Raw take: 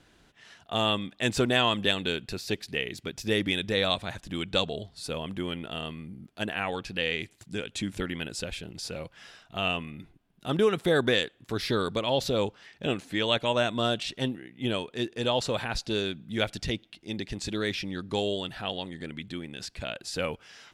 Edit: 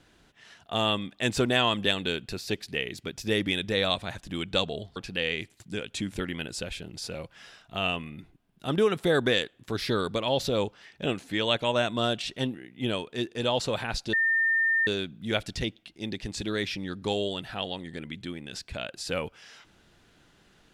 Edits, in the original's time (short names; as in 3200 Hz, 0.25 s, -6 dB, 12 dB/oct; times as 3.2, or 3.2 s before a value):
4.96–6.77 cut
15.94 add tone 1810 Hz -21 dBFS 0.74 s